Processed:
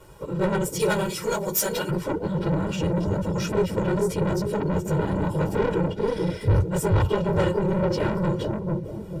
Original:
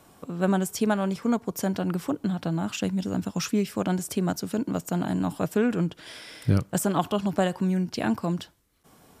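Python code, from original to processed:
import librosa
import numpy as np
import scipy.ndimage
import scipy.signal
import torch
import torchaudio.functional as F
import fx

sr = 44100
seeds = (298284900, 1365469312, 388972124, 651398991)

y = fx.phase_scramble(x, sr, seeds[0], window_ms=50)
y = fx.tilt_eq(y, sr, slope=fx.steps((0.0, -1.5), (0.79, 3.0), (1.89, -2.5)))
y = fx.echo_bbd(y, sr, ms=441, stages=2048, feedback_pct=32, wet_db=-4)
y = 10.0 ** (-18.5 / 20.0) * np.tanh(y / 10.0 ** (-18.5 / 20.0))
y = fx.leveller(y, sr, passes=1)
y = y + 0.9 * np.pad(y, (int(2.1 * sr / 1000.0), 0))[:len(y)]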